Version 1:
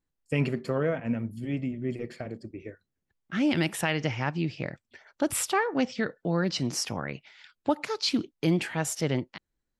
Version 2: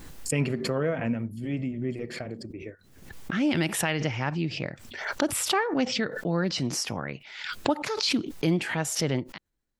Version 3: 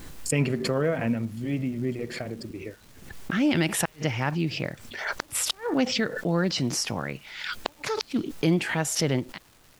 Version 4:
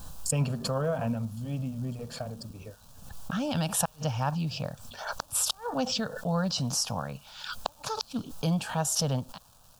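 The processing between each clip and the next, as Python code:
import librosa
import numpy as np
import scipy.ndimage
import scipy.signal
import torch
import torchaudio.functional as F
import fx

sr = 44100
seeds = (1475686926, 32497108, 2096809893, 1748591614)

y1 = fx.pre_swell(x, sr, db_per_s=62.0)
y2 = fx.gate_flip(y1, sr, shuts_db=-13.0, range_db=-37)
y2 = fx.dmg_noise_colour(y2, sr, seeds[0], colour='pink', level_db=-61.0)
y2 = fx.dmg_crackle(y2, sr, seeds[1], per_s=590.0, level_db=-47.0)
y2 = y2 * librosa.db_to_amplitude(2.0)
y3 = fx.fixed_phaser(y2, sr, hz=850.0, stages=4)
y3 = y3 * librosa.db_to_amplitude(1.0)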